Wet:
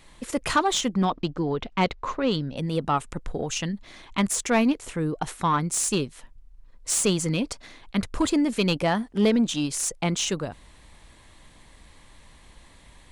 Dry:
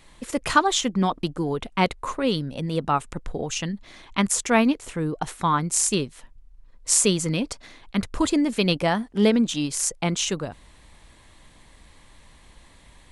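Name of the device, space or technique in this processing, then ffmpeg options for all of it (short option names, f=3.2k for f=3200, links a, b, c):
saturation between pre-emphasis and de-emphasis: -filter_complex "[0:a]asettb=1/sr,asplit=3[a][b][c];[a]atrim=end=1.054[d];[b]atrim=start=1.05:end=2.57,asetpts=PTS-STARTPTS,afade=t=in:d=0.004:c=qsin,afade=t=out:st=1.516:d=0.004:c=qsin,lowpass=f=5.7k:w=0.5412,lowpass=f=5.7k:w=1.3066[e];[c]atrim=start=2.566[f];[d][e]acrossfade=d=0.004:c1=hsin:c2=qsin[g];[g][f]acrossfade=d=0.004:c1=qsin:c2=hsin,highshelf=f=5.5k:g=11,asoftclip=type=tanh:threshold=-12.5dB,highshelf=f=5.5k:g=-11"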